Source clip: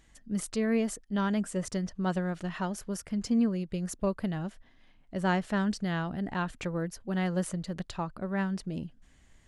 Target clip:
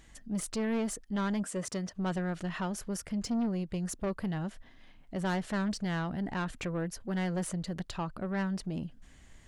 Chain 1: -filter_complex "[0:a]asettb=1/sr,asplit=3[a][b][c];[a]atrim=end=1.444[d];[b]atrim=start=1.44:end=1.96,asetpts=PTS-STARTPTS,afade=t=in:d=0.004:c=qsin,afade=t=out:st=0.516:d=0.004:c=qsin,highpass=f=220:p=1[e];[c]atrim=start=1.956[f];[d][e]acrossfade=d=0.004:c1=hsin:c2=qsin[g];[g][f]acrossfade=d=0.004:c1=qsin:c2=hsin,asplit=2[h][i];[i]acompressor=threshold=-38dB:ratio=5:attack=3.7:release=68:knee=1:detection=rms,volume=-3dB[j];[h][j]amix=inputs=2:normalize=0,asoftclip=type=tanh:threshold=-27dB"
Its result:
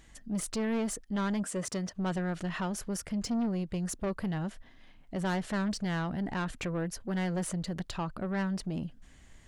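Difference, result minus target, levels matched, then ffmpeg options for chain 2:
compressor: peak gain reduction -9 dB
-filter_complex "[0:a]asettb=1/sr,asplit=3[a][b][c];[a]atrim=end=1.444[d];[b]atrim=start=1.44:end=1.96,asetpts=PTS-STARTPTS,afade=t=in:d=0.004:c=qsin,afade=t=out:st=0.516:d=0.004:c=qsin,highpass=f=220:p=1[e];[c]atrim=start=1.956[f];[d][e]acrossfade=d=0.004:c1=hsin:c2=qsin[g];[g][f]acrossfade=d=0.004:c1=qsin:c2=hsin,asplit=2[h][i];[i]acompressor=threshold=-49dB:ratio=5:attack=3.7:release=68:knee=1:detection=rms,volume=-3dB[j];[h][j]amix=inputs=2:normalize=0,asoftclip=type=tanh:threshold=-27dB"

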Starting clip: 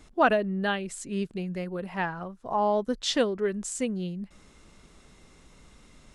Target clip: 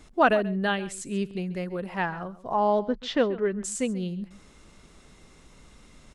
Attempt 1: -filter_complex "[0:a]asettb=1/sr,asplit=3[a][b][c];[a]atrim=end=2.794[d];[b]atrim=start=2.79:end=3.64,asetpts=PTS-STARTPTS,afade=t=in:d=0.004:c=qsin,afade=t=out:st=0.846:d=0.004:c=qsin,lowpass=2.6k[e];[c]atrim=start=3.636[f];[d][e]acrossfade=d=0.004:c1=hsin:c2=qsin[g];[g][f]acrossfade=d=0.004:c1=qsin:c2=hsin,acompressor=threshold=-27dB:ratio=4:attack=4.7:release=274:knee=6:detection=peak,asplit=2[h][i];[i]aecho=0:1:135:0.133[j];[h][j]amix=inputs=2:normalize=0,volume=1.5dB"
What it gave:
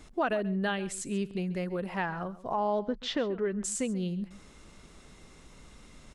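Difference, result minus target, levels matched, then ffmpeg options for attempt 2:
compressor: peak gain reduction +11 dB
-filter_complex "[0:a]asettb=1/sr,asplit=3[a][b][c];[a]atrim=end=2.794[d];[b]atrim=start=2.79:end=3.64,asetpts=PTS-STARTPTS,afade=t=in:d=0.004:c=qsin,afade=t=out:st=0.846:d=0.004:c=qsin,lowpass=2.6k[e];[c]atrim=start=3.636[f];[d][e]acrossfade=d=0.004:c1=hsin:c2=qsin[g];[g][f]acrossfade=d=0.004:c1=qsin:c2=hsin,asplit=2[h][i];[i]aecho=0:1:135:0.133[j];[h][j]amix=inputs=2:normalize=0,volume=1.5dB"

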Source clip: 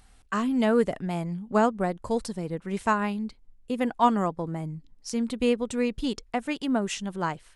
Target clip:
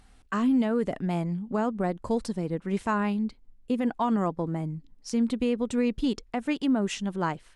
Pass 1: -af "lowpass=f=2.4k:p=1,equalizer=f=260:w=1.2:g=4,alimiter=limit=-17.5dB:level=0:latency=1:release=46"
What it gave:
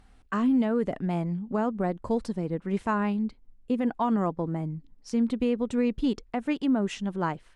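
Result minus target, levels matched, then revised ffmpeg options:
8000 Hz band -6.0 dB
-af "lowpass=f=6.3k:p=1,equalizer=f=260:w=1.2:g=4,alimiter=limit=-17.5dB:level=0:latency=1:release=46"

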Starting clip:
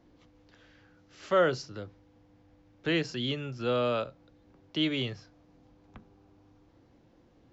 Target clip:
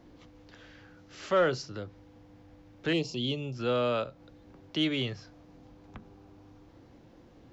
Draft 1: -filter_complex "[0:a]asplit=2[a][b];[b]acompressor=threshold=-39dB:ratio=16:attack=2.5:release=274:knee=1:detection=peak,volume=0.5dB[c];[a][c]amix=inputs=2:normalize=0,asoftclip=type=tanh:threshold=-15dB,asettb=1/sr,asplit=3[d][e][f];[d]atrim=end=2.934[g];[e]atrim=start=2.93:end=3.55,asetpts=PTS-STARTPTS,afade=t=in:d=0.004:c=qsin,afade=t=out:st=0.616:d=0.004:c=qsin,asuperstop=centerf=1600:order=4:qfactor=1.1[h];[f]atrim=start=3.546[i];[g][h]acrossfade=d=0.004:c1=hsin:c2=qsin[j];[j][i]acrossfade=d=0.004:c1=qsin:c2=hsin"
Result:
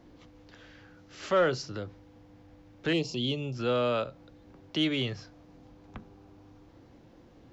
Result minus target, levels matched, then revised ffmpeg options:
compressor: peak gain reduction -8 dB
-filter_complex "[0:a]asplit=2[a][b];[b]acompressor=threshold=-47.5dB:ratio=16:attack=2.5:release=274:knee=1:detection=peak,volume=0.5dB[c];[a][c]amix=inputs=2:normalize=0,asoftclip=type=tanh:threshold=-15dB,asettb=1/sr,asplit=3[d][e][f];[d]atrim=end=2.934[g];[e]atrim=start=2.93:end=3.55,asetpts=PTS-STARTPTS,afade=t=in:d=0.004:c=qsin,afade=t=out:st=0.616:d=0.004:c=qsin,asuperstop=centerf=1600:order=4:qfactor=1.1[h];[f]atrim=start=3.546[i];[g][h]acrossfade=d=0.004:c1=hsin:c2=qsin[j];[j][i]acrossfade=d=0.004:c1=qsin:c2=hsin"

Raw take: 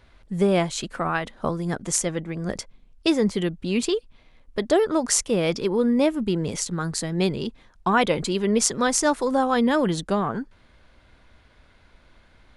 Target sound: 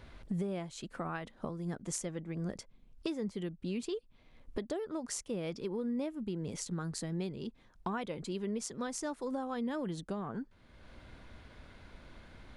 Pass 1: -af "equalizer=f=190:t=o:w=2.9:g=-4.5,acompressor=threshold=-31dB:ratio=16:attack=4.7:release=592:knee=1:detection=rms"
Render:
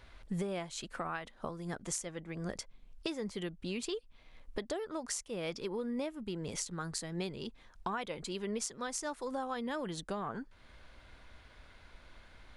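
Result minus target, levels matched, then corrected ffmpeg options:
250 Hz band -2.5 dB
-af "equalizer=f=190:t=o:w=2.9:g=5,acompressor=threshold=-31dB:ratio=16:attack=4.7:release=592:knee=1:detection=rms"

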